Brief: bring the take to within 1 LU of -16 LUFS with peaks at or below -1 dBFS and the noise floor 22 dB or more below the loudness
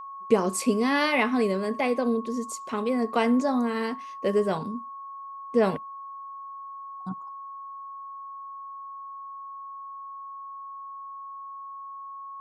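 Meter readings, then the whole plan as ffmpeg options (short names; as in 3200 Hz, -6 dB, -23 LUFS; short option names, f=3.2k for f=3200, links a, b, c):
steady tone 1100 Hz; tone level -37 dBFS; loudness -26.0 LUFS; peak -8.0 dBFS; loudness target -16.0 LUFS
-> -af "bandreject=f=1.1k:w=30"
-af "volume=10dB,alimiter=limit=-1dB:level=0:latency=1"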